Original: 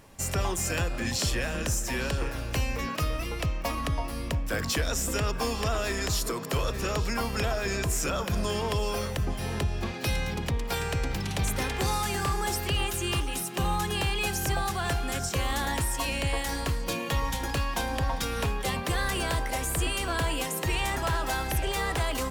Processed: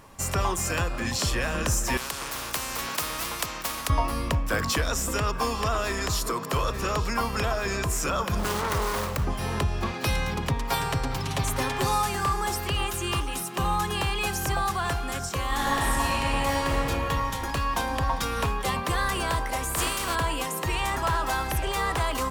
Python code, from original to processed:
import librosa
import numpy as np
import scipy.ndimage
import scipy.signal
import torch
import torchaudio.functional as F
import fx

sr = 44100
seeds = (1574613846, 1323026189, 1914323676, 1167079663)

y = fx.spectral_comp(x, sr, ratio=4.0, at=(1.97, 3.9))
y = fx.self_delay(y, sr, depth_ms=0.53, at=(8.39, 9.25))
y = fx.comb(y, sr, ms=7.4, depth=0.65, at=(10.49, 12.09))
y = fx.reverb_throw(y, sr, start_s=15.48, length_s=1.33, rt60_s=2.9, drr_db=-5.0)
y = fx.spec_flatten(y, sr, power=0.54, at=(19.74, 20.14), fade=0.02)
y = fx.rider(y, sr, range_db=10, speed_s=2.0)
y = fx.peak_eq(y, sr, hz=1100.0, db=7.5, octaves=0.64)